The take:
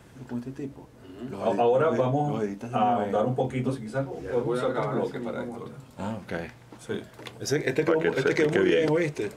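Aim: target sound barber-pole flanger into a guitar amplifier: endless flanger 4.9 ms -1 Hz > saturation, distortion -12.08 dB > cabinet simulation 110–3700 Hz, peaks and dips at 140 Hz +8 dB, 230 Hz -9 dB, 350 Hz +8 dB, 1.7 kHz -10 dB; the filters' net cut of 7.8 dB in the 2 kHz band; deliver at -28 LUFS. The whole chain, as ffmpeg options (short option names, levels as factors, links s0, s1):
-filter_complex "[0:a]equalizer=f=2000:t=o:g=-4,asplit=2[s0][s1];[s1]adelay=4.9,afreqshift=-1[s2];[s0][s2]amix=inputs=2:normalize=1,asoftclip=threshold=0.0596,highpass=110,equalizer=f=140:t=q:w=4:g=8,equalizer=f=230:t=q:w=4:g=-9,equalizer=f=350:t=q:w=4:g=8,equalizer=f=1700:t=q:w=4:g=-10,lowpass=f=3700:w=0.5412,lowpass=f=3700:w=1.3066,volume=1.58"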